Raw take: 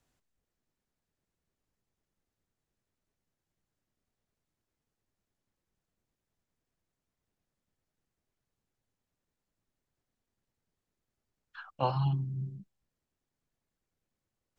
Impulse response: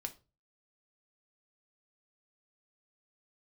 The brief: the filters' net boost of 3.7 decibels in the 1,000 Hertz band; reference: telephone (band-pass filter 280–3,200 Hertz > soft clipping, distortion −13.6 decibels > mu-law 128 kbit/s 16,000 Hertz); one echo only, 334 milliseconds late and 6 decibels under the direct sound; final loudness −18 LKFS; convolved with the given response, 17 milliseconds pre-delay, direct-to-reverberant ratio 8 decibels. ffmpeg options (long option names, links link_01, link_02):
-filter_complex "[0:a]equalizer=frequency=1000:width_type=o:gain=4.5,aecho=1:1:334:0.501,asplit=2[link_01][link_02];[1:a]atrim=start_sample=2205,adelay=17[link_03];[link_02][link_03]afir=irnorm=-1:irlink=0,volume=-6dB[link_04];[link_01][link_04]amix=inputs=2:normalize=0,highpass=280,lowpass=3200,asoftclip=threshold=-20.5dB,volume=18.5dB" -ar 16000 -c:a pcm_mulaw